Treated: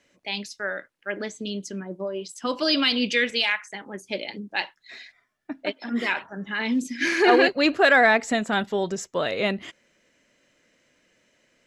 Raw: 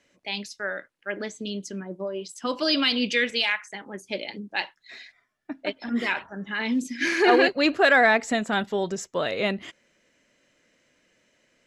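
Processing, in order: 5.71–6.36 s: high-pass 250 Hz -> 110 Hz 12 dB/octave; trim +1 dB

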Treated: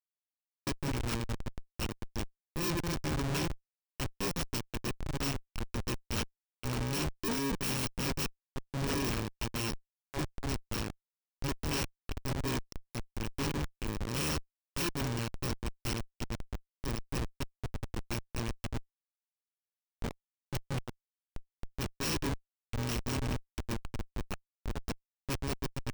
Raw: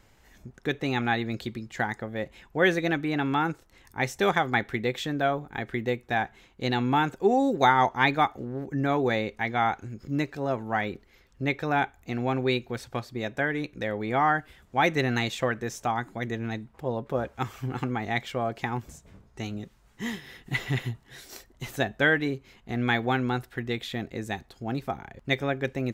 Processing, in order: bit-reversed sample order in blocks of 64 samples; de-hum 142.2 Hz, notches 7; dynamic bell 9.1 kHz, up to -6 dB, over -38 dBFS, Q 0.83; Schmitt trigger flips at -25 dBFS; peaking EQ 12 kHz -11.5 dB 0.26 oct; peak limiter -28 dBFS, peak gain reduction 5.5 dB

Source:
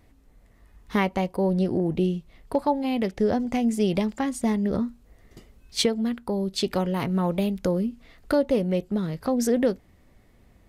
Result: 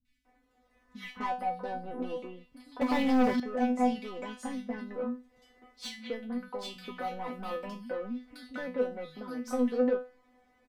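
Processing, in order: 7.25–7.86 s: rippled EQ curve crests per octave 1.3, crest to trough 9 dB; three bands offset in time lows, highs, mids 50/250 ms, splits 180/2400 Hz; overdrive pedal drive 21 dB, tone 3.8 kHz, clips at -8.5 dBFS; treble shelf 2.7 kHz -8 dB; feedback comb 250 Hz, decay 0.29 s, harmonics all, mix 100%; 2.81–3.40 s: waveshaping leveller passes 3

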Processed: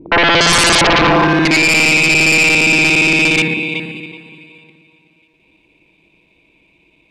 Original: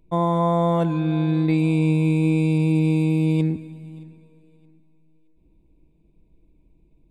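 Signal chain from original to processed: time reversed locally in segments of 58 ms; on a send: filtered feedback delay 377 ms, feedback 22%, low-pass 4.6 kHz, level -9 dB; on the sum: band-pass sweep 320 Hz -> 2.6 kHz, 0.12–1.79 s; sine folder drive 20 dB, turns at -16 dBFS; trim +8.5 dB

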